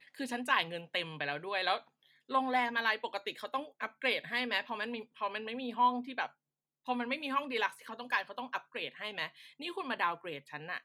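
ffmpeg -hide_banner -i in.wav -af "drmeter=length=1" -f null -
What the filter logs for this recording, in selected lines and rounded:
Channel 1: DR: 14.3
Overall DR: 14.3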